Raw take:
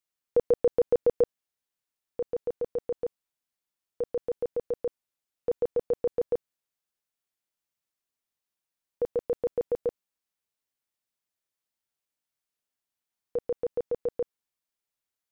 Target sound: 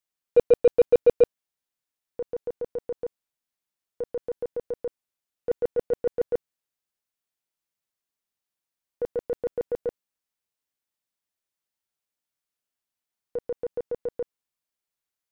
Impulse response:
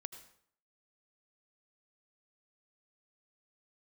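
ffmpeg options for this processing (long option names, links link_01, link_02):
-af "aeval=exprs='0.178*(cos(1*acos(clip(val(0)/0.178,-1,1)))-cos(1*PI/2))+0.00501*(cos(5*acos(clip(val(0)/0.178,-1,1)))-cos(5*PI/2))+0.00141*(cos(8*acos(clip(val(0)/0.178,-1,1)))-cos(8*PI/2))':channel_layout=same,agate=range=-8dB:threshold=-24dB:ratio=16:detection=peak,volume=6.5dB"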